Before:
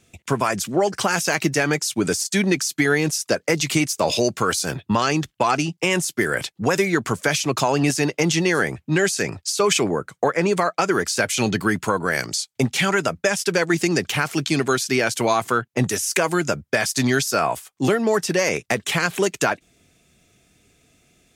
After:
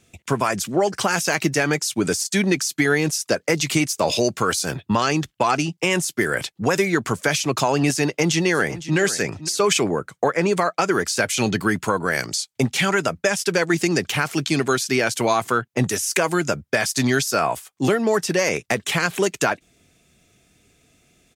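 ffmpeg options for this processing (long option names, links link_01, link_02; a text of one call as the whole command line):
ffmpeg -i in.wav -filter_complex "[0:a]asplit=2[link_01][link_02];[link_02]afade=type=in:start_time=8.08:duration=0.01,afade=type=out:start_time=8.97:duration=0.01,aecho=0:1:510|1020:0.188365|0.0188365[link_03];[link_01][link_03]amix=inputs=2:normalize=0" out.wav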